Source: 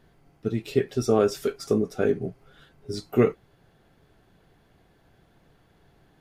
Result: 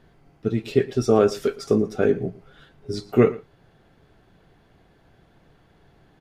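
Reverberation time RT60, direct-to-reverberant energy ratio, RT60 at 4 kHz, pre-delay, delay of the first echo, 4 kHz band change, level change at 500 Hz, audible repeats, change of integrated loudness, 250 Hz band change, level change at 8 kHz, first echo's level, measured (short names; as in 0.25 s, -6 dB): none, none, none, none, 0.114 s, +1.5 dB, +3.5 dB, 1, +3.5 dB, +3.5 dB, n/a, -19.5 dB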